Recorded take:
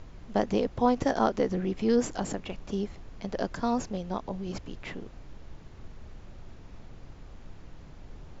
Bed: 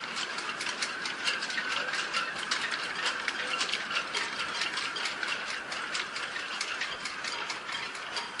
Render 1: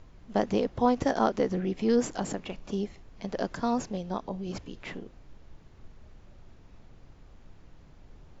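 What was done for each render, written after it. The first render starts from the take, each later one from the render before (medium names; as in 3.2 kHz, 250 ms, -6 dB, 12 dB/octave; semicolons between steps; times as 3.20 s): noise print and reduce 6 dB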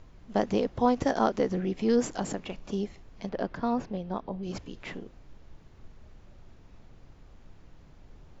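3.29–4.43 s: distance through air 210 m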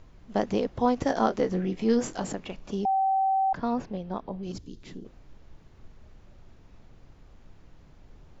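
1.08–2.32 s: doubling 22 ms -9 dB; 2.85–3.53 s: bleep 771 Hz -21 dBFS; 4.52–5.05 s: high-order bell 1.2 kHz -13.5 dB 2.8 oct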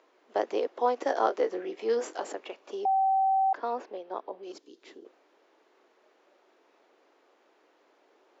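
steep high-pass 340 Hz 36 dB/octave; treble shelf 4.6 kHz -9 dB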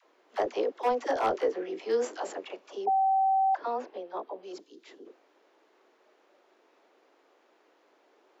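hard clipper -18.5 dBFS, distortion -21 dB; phase dispersion lows, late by 54 ms, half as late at 590 Hz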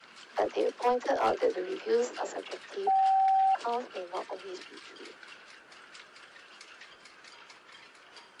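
add bed -17 dB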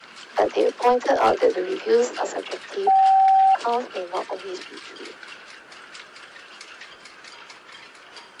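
trim +9 dB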